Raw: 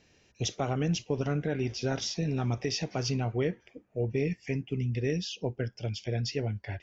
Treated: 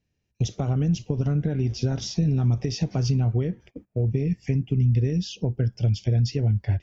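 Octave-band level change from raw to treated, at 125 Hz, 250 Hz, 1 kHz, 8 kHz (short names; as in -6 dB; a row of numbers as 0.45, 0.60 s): +10.5 dB, +6.0 dB, -2.5 dB, n/a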